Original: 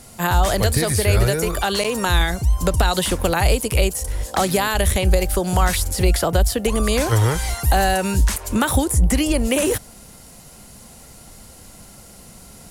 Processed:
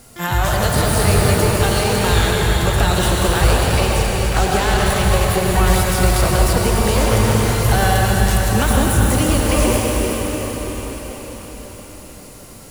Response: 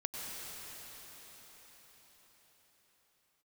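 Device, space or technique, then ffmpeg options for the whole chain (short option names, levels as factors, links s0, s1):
shimmer-style reverb: -filter_complex "[0:a]asettb=1/sr,asplit=3[s0][s1][s2];[s0]atrim=end=3.524[s3];[s1]atrim=start=3.52:end=4.9,asetpts=PTS-STARTPTS,afade=t=in:d=0.004:c=qsin,afade=t=out:st=1.376:d=0.004:c=qsin,lowpass=8800[s4];[s2]atrim=start=4.896[s5];[s3][s4]acrossfade=d=0.004:c1=hsin:c2=qsin[s6];[s6][s5]acrossfade=d=0.004:c1=qsin:c2=hsin,asplit=2[s7][s8];[s8]asetrate=88200,aresample=44100,atempo=0.5,volume=0.447[s9];[s7][s9]amix=inputs=2:normalize=0[s10];[1:a]atrim=start_sample=2205[s11];[s10][s11]afir=irnorm=-1:irlink=0"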